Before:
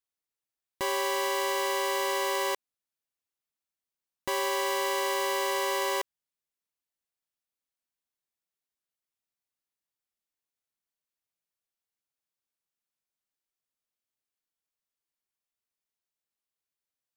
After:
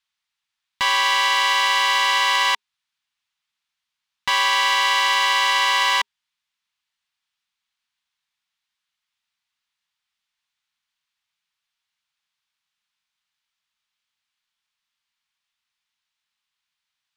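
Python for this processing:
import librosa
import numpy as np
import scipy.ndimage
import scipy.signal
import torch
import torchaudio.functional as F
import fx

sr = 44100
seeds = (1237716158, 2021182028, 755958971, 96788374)

y = fx.curve_eq(x, sr, hz=(220.0, 410.0, 930.0, 3500.0, 15000.0), db=(0, -18, 8, 14, -8))
y = F.gain(torch.from_numpy(y), 3.0).numpy()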